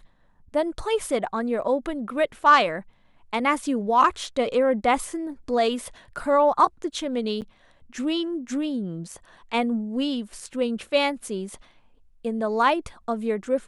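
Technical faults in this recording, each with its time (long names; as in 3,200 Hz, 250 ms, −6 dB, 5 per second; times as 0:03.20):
0:07.41–0:07.42: drop-out 8.6 ms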